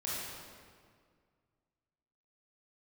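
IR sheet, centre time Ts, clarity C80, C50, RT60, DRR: 132 ms, -1.0 dB, -3.5 dB, 2.0 s, -8.0 dB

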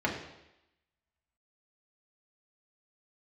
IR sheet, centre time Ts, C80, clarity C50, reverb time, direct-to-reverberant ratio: 30 ms, 8.5 dB, 6.0 dB, 0.90 s, -3.0 dB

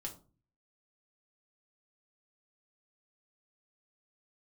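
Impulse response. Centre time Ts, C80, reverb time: 14 ms, 18.5 dB, 0.35 s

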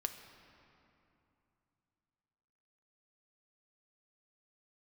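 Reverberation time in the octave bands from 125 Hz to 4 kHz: 3.7 s, 3.4 s, 2.8 s, 2.9 s, 2.4 s, 1.8 s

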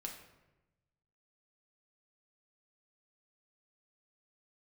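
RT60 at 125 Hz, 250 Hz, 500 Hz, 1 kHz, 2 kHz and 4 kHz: 1.6 s, 1.2 s, 1.1 s, 0.95 s, 0.90 s, 0.65 s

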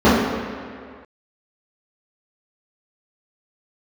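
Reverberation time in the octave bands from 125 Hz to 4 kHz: 1.7 s, 1.9 s, 2.0 s, 2.1 s, 2.1 s, 1.6 s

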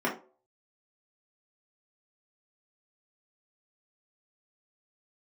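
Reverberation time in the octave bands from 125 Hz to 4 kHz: 0.35 s, 0.35 s, 0.45 s, 0.35 s, 0.25 s, 0.20 s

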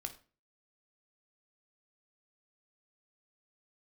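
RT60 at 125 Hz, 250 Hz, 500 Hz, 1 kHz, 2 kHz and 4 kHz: 0.50 s, 0.45 s, 0.40 s, 0.35 s, 0.35 s, 0.30 s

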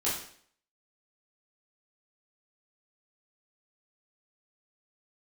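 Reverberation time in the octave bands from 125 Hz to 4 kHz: 0.50 s, 0.60 s, 0.60 s, 0.55 s, 0.55 s, 0.55 s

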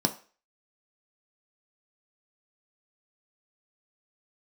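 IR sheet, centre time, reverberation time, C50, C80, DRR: 8 ms, 0.40 s, 14.5 dB, 19.0 dB, 5.0 dB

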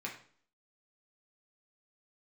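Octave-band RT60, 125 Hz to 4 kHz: 0.50 s, 0.60 s, 0.50 s, 0.50 s, 0.45 s, 0.45 s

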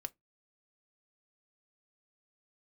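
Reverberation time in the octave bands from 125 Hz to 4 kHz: 0.25 s, 0.25 s, 0.15 s, 0.15 s, 0.15 s, 0.10 s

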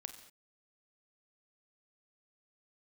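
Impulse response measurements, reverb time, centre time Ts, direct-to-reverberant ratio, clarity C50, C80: no single decay rate, 15 ms, 7.0 dB, 9.5 dB, 11.0 dB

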